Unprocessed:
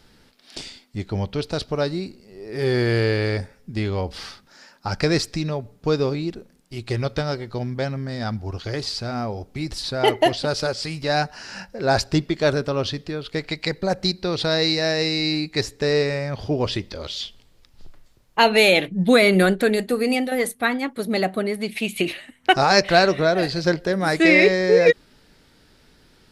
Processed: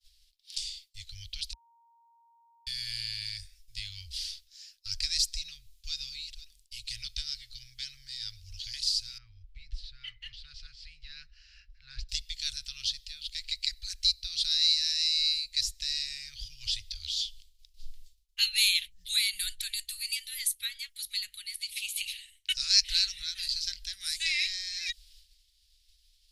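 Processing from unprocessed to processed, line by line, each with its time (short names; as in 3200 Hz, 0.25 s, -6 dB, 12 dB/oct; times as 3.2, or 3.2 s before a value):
1.53–2.67 bleep 930 Hz -9 dBFS
5.4–5.95 echo throw 0.49 s, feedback 70%, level -17.5 dB
9.18–12.09 LPF 1400 Hz
whole clip: expander -47 dBFS; inverse Chebyshev band-stop 220–750 Hz, stop band 80 dB; dynamic EQ 2800 Hz, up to -4 dB, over -39 dBFS, Q 0.86; gain +2.5 dB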